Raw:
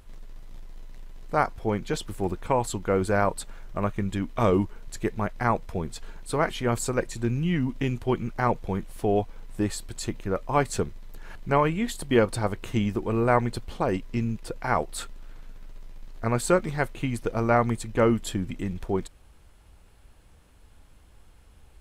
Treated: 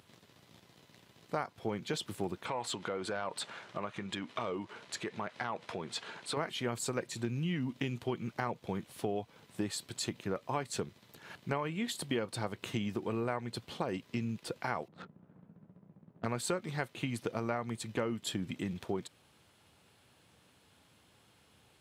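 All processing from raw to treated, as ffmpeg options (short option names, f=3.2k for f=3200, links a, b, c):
-filter_complex "[0:a]asettb=1/sr,asplit=3[a][b][c];[a]atrim=end=2.454[d];[b]atrim=start=2.45:end=6.37,asetpts=PTS-STARTPTS,afade=t=in:d=0.004:c=qsin,afade=t=out:st=3.916:d=0.004:c=qsin,lowpass=f=11k:w=0.5412,lowpass=f=11k:w=1.3066,acompressor=threshold=-33dB:ratio=6:attack=3.2:release=140:knee=1:detection=peak,asplit=2[e][f];[f]highpass=f=720:p=1,volume=16dB,asoftclip=type=tanh:threshold=-17dB[g];[e][g]amix=inputs=2:normalize=0,lowpass=f=2.9k:p=1,volume=-6dB[h];[c]atrim=start=6.366[i];[d][h]acrossfade=d=0.004:c1=hsin:c2=qsin[j];[j][i]acrossfade=d=0.004:c1=qsin:c2=hsin,asettb=1/sr,asplit=3[k][l][m];[k]atrim=end=14.884[n];[l]atrim=start=14.88:end=16.25,asetpts=PTS-STARTPTS,afade=t=in:d=0.004:c=qsin,afade=t=out:st=1.366:d=0.004:c=qsin,lowpass=f=1.7k:p=1,equalizer=f=180:w=2.7:g=12.5,adynamicsmooth=sensitivity=6:basefreq=720[o];[m]atrim=start=16.246[p];[n][o]acrossfade=d=0.004:c1=hsin:c2=qsin[q];[q][p]acrossfade=d=0.004:c1=qsin:c2=hsin,highpass=f=110:w=0.5412,highpass=f=110:w=1.3066,equalizer=f=3.6k:t=o:w=1.2:g=6,acompressor=threshold=-27dB:ratio=6,volume=-4dB"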